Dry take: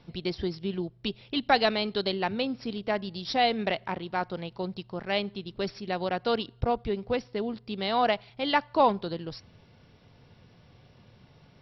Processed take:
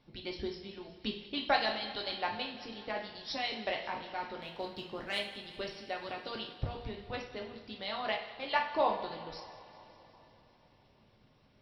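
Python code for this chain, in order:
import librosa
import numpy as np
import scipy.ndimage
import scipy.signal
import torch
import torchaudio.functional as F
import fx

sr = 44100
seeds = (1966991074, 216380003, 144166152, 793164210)

y = fx.hpss(x, sr, part='harmonic', gain_db=-13)
y = fx.leveller(y, sr, passes=1, at=(4.38, 5.21))
y = fx.echo_thinned(y, sr, ms=188, feedback_pct=69, hz=420.0, wet_db=-18.0)
y = fx.rev_double_slope(y, sr, seeds[0], early_s=0.55, late_s=4.0, knee_db=-19, drr_db=0.0)
y = y * librosa.db_to_amplitude(-6.5)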